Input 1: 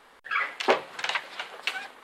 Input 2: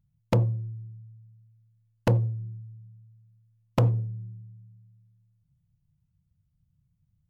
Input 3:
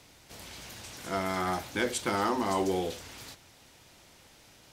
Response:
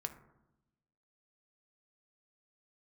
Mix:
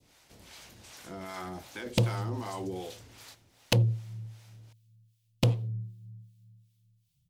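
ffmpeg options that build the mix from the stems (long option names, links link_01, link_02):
-filter_complex "[1:a]highshelf=frequency=2100:width_type=q:width=1.5:gain=13.5,adelay=1650,volume=0.5dB[link_01];[2:a]adynamicequalizer=threshold=0.00794:dfrequency=1500:dqfactor=0.86:tfrequency=1500:tqfactor=0.86:attack=5:release=100:ratio=0.375:range=2:mode=cutabove:tftype=bell,alimiter=limit=-23.5dB:level=0:latency=1:release=11,volume=-3dB[link_02];[link_01][link_02]amix=inputs=2:normalize=0,acrossover=split=500[link_03][link_04];[link_03]aeval=exprs='val(0)*(1-0.7/2+0.7/2*cos(2*PI*2.6*n/s))':channel_layout=same[link_05];[link_04]aeval=exprs='val(0)*(1-0.7/2-0.7/2*cos(2*PI*2.6*n/s))':channel_layout=same[link_06];[link_05][link_06]amix=inputs=2:normalize=0"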